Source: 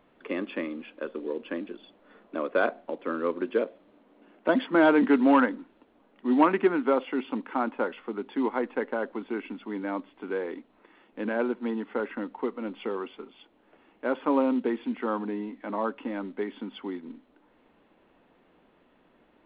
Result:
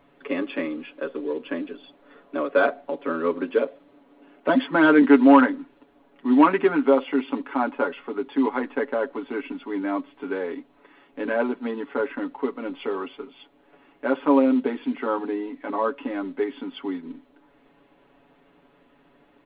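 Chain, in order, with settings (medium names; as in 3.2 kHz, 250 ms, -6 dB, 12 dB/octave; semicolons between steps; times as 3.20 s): comb 7.1 ms, depth 85%; trim +2 dB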